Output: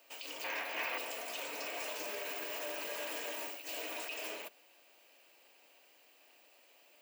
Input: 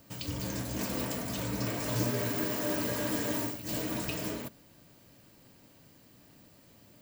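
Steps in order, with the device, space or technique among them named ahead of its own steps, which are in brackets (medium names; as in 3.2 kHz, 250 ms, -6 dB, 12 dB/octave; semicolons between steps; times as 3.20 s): laptop speaker (high-pass 420 Hz 24 dB/octave; peaking EQ 750 Hz +5 dB 0.4 oct; peaking EQ 2.6 kHz +11.5 dB 0.56 oct; peak limiter -26 dBFS, peak gain reduction 11.5 dB); 0.44–0.98 s: graphic EQ 1/2/8 kHz +6/+10/-11 dB; trim -5 dB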